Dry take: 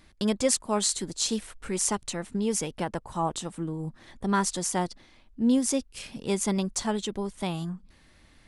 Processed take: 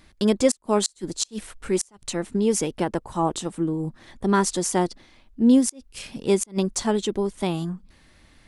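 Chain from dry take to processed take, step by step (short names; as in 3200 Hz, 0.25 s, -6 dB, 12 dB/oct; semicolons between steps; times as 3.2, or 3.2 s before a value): flipped gate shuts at -11 dBFS, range -32 dB; dynamic EQ 350 Hz, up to +7 dB, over -42 dBFS, Q 1.4; gain +3 dB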